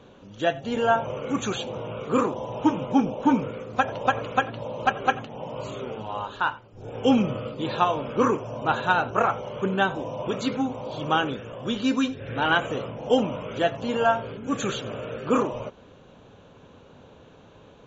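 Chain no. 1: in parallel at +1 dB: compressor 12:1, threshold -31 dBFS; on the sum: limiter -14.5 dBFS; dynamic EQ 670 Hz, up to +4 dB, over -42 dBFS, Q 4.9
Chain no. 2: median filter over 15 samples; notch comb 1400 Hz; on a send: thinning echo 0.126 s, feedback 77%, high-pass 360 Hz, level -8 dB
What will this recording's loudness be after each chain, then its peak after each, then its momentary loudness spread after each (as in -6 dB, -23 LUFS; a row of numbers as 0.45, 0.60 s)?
-26.0, -27.0 LUFS; -11.5, -8.0 dBFS; 19, 10 LU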